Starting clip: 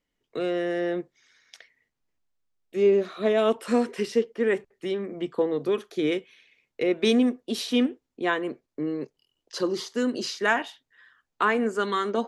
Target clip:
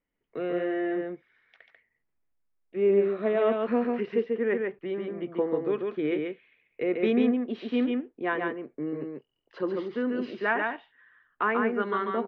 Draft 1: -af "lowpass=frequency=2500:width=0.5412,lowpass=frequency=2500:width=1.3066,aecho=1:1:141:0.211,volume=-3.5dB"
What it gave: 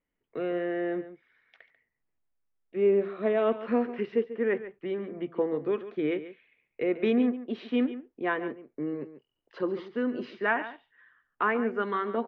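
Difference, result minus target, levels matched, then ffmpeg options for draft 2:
echo-to-direct −10 dB
-af "lowpass=frequency=2500:width=0.5412,lowpass=frequency=2500:width=1.3066,aecho=1:1:141:0.668,volume=-3.5dB"

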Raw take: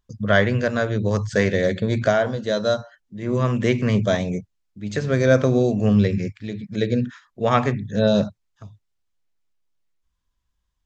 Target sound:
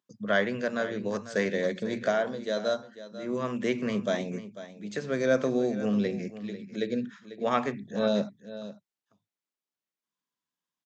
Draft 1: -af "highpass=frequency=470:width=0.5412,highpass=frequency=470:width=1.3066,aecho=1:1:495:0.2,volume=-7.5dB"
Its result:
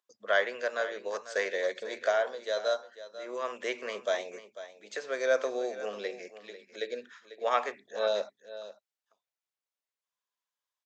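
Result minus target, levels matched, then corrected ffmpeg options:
250 Hz band −16.0 dB
-af "highpass=frequency=180:width=0.5412,highpass=frequency=180:width=1.3066,aecho=1:1:495:0.2,volume=-7.5dB"

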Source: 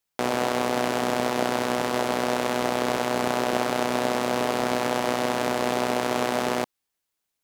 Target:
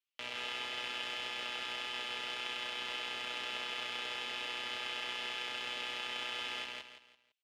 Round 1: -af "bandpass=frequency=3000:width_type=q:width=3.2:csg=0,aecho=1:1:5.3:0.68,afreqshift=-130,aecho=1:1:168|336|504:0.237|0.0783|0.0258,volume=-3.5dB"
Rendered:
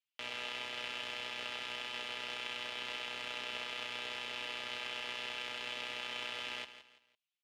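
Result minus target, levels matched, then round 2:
echo-to-direct −10 dB
-af "bandpass=frequency=3000:width_type=q:width=3.2:csg=0,aecho=1:1:5.3:0.68,afreqshift=-130,aecho=1:1:168|336|504|672:0.75|0.247|0.0817|0.0269,volume=-3.5dB"

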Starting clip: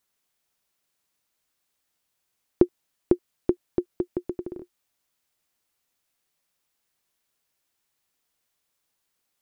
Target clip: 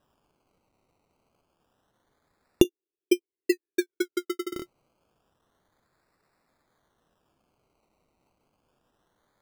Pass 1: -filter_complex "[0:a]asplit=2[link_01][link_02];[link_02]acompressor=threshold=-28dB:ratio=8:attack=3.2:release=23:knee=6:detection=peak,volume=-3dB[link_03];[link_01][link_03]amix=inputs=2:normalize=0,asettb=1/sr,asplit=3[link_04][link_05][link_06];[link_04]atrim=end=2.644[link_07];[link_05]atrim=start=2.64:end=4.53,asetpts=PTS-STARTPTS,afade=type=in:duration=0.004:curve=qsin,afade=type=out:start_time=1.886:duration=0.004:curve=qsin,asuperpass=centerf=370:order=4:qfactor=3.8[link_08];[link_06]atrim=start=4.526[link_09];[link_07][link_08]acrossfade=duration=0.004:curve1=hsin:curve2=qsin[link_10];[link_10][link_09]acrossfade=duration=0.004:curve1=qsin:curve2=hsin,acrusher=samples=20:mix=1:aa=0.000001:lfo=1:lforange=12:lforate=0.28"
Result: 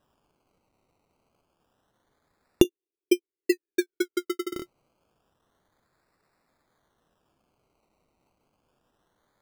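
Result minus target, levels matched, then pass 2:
downward compressor: peak gain reduction −5 dB
-filter_complex "[0:a]asplit=2[link_01][link_02];[link_02]acompressor=threshold=-34dB:ratio=8:attack=3.2:release=23:knee=6:detection=peak,volume=-3dB[link_03];[link_01][link_03]amix=inputs=2:normalize=0,asettb=1/sr,asplit=3[link_04][link_05][link_06];[link_04]atrim=end=2.644[link_07];[link_05]atrim=start=2.64:end=4.53,asetpts=PTS-STARTPTS,afade=type=in:duration=0.004:curve=qsin,afade=type=out:start_time=1.886:duration=0.004:curve=qsin,asuperpass=centerf=370:order=4:qfactor=3.8[link_08];[link_06]atrim=start=4.526[link_09];[link_07][link_08]acrossfade=duration=0.004:curve1=hsin:curve2=qsin[link_10];[link_10][link_09]acrossfade=duration=0.004:curve1=qsin:curve2=hsin,acrusher=samples=20:mix=1:aa=0.000001:lfo=1:lforange=12:lforate=0.28"

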